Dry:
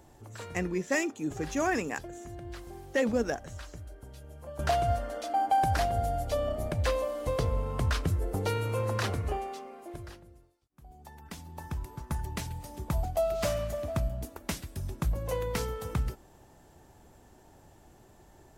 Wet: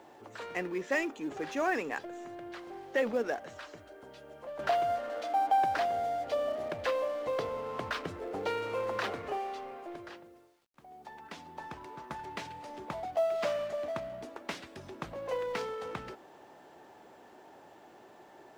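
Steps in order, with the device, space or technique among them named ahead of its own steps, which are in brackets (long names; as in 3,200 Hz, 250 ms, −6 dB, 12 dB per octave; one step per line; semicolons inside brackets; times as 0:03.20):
phone line with mismatched companding (band-pass filter 350–3,500 Hz; mu-law and A-law mismatch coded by mu)
level −1.5 dB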